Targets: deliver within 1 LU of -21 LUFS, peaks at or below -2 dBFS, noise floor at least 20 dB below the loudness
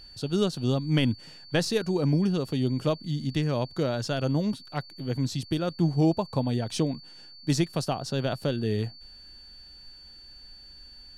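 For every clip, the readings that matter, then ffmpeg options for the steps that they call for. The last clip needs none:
steady tone 4.5 kHz; tone level -47 dBFS; loudness -28.0 LUFS; peak level -13.0 dBFS; loudness target -21.0 LUFS
-> -af "bandreject=f=4500:w=30"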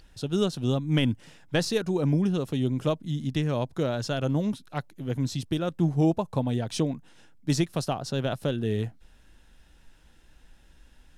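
steady tone not found; loudness -28.0 LUFS; peak level -13.5 dBFS; loudness target -21.0 LUFS
-> -af "volume=2.24"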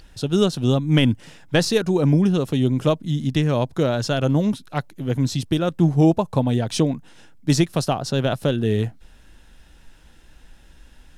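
loudness -21.0 LUFS; peak level -6.5 dBFS; noise floor -49 dBFS

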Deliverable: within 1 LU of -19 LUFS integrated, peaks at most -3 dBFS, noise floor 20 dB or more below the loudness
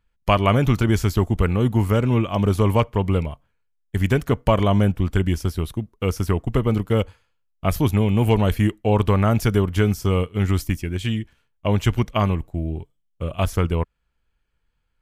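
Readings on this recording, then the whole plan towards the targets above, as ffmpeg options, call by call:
loudness -21.5 LUFS; peak level -4.0 dBFS; loudness target -19.0 LUFS
-> -af "volume=1.33,alimiter=limit=0.708:level=0:latency=1"

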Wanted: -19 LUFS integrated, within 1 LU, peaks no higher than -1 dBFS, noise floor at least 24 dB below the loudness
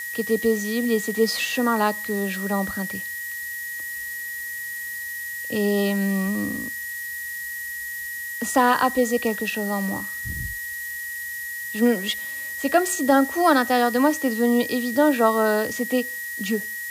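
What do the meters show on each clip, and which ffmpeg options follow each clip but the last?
steady tone 1.9 kHz; tone level -30 dBFS; noise floor -32 dBFS; noise floor target -48 dBFS; loudness -23.5 LUFS; peak level -6.0 dBFS; loudness target -19.0 LUFS
-> -af "bandreject=f=1900:w=30"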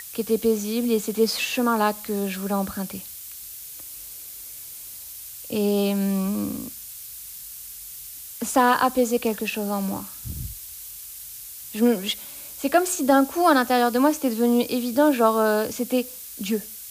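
steady tone not found; noise floor -39 dBFS; noise floor target -47 dBFS
-> -af "afftdn=nr=8:nf=-39"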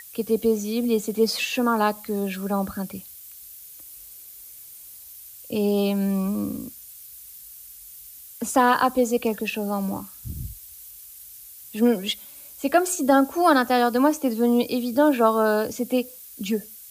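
noise floor -44 dBFS; noise floor target -47 dBFS
-> -af "afftdn=nr=6:nf=-44"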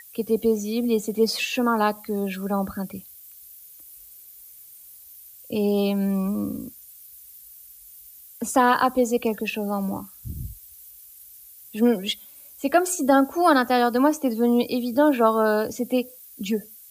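noise floor -47 dBFS; loudness -23.0 LUFS; peak level -6.5 dBFS; loudness target -19.0 LUFS
-> -af "volume=1.58"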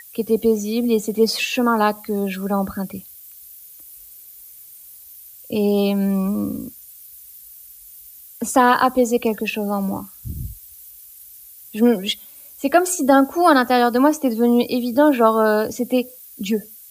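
loudness -19.0 LUFS; peak level -2.5 dBFS; noise floor -43 dBFS

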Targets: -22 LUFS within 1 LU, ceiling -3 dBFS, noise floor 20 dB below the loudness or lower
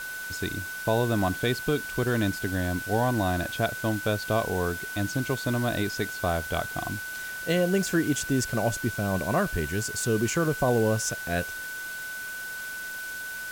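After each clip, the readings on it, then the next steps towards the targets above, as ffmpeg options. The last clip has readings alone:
steady tone 1.5 kHz; tone level -34 dBFS; noise floor -36 dBFS; noise floor target -48 dBFS; loudness -28.0 LUFS; peak level -13.0 dBFS; loudness target -22.0 LUFS
-> -af "bandreject=f=1500:w=30"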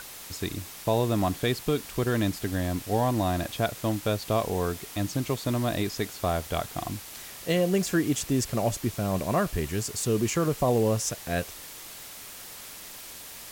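steady tone not found; noise floor -43 dBFS; noise floor target -48 dBFS
-> -af "afftdn=nr=6:nf=-43"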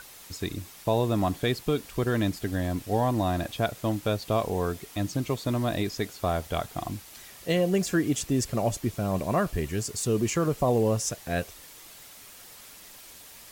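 noise floor -48 dBFS; loudness -28.0 LUFS; peak level -14.0 dBFS; loudness target -22.0 LUFS
-> -af "volume=2"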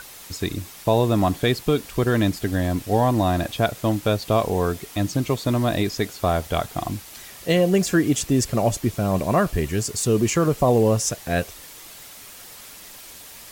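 loudness -22.0 LUFS; peak level -8.0 dBFS; noise floor -42 dBFS

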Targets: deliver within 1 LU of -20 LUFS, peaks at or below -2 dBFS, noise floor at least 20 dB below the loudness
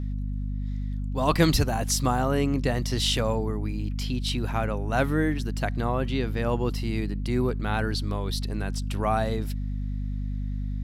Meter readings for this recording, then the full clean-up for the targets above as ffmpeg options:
hum 50 Hz; highest harmonic 250 Hz; hum level -27 dBFS; loudness -27.5 LUFS; peak level -5.5 dBFS; loudness target -20.0 LUFS
-> -af "bandreject=f=50:t=h:w=4,bandreject=f=100:t=h:w=4,bandreject=f=150:t=h:w=4,bandreject=f=200:t=h:w=4,bandreject=f=250:t=h:w=4"
-af "volume=2.37,alimiter=limit=0.794:level=0:latency=1"

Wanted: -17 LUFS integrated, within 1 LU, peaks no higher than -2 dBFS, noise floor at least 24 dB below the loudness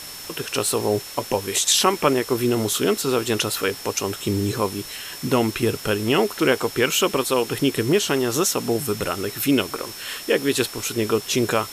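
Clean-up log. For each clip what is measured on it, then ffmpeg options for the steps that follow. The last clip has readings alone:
steady tone 5.4 kHz; tone level -39 dBFS; noise floor -37 dBFS; noise floor target -46 dBFS; loudness -22.0 LUFS; peak level -5.0 dBFS; loudness target -17.0 LUFS
-> -af "bandreject=f=5400:w=30"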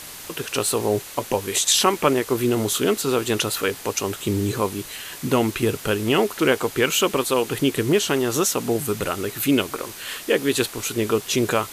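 steady tone not found; noise floor -38 dBFS; noise floor target -46 dBFS
-> -af "afftdn=nr=8:nf=-38"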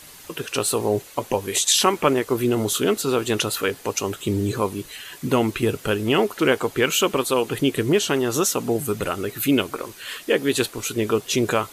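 noise floor -44 dBFS; noise floor target -46 dBFS
-> -af "afftdn=nr=6:nf=-44"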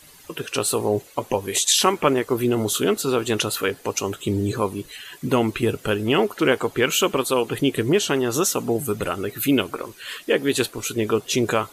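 noise floor -48 dBFS; loudness -22.0 LUFS; peak level -5.0 dBFS; loudness target -17.0 LUFS
-> -af "volume=1.78,alimiter=limit=0.794:level=0:latency=1"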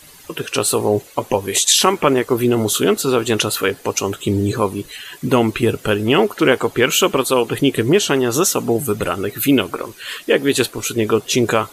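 loudness -17.0 LUFS; peak level -2.0 dBFS; noise floor -43 dBFS

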